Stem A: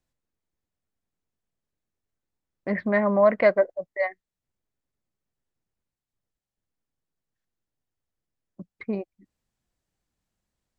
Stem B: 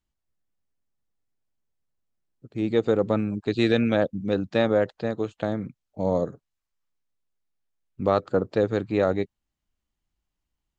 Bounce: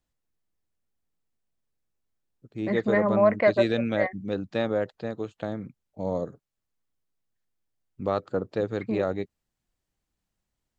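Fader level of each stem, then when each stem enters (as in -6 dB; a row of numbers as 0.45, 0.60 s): -2.0, -5.0 dB; 0.00, 0.00 s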